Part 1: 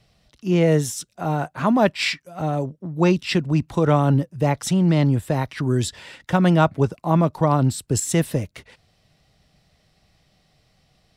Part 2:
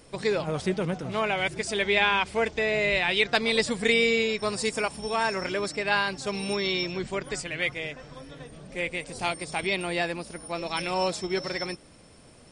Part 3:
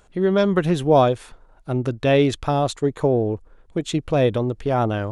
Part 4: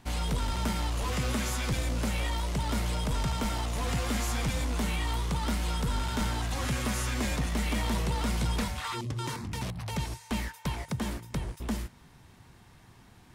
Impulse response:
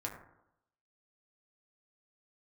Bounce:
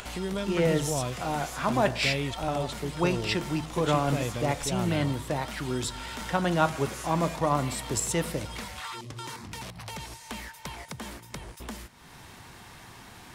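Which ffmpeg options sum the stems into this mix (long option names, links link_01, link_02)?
-filter_complex "[0:a]volume=-6.5dB,asplit=2[link_01][link_02];[link_02]volume=-7.5dB[link_03];[2:a]equalizer=frequency=2700:width=1.5:gain=8.5,acrossover=split=190[link_04][link_05];[link_05]acompressor=threshold=-43dB:ratio=2[link_06];[link_04][link_06]amix=inputs=2:normalize=0,volume=0.5dB[link_07];[3:a]volume=-5dB[link_08];[4:a]atrim=start_sample=2205[link_09];[link_03][link_09]afir=irnorm=-1:irlink=0[link_10];[link_01][link_07][link_08][link_10]amix=inputs=4:normalize=0,lowshelf=frequency=320:gain=-10,acompressor=mode=upward:threshold=-32dB:ratio=2.5"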